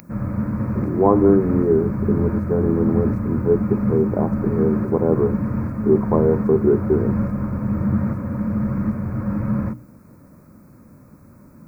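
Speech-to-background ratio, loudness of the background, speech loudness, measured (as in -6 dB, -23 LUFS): 3.0 dB, -23.5 LUFS, -20.5 LUFS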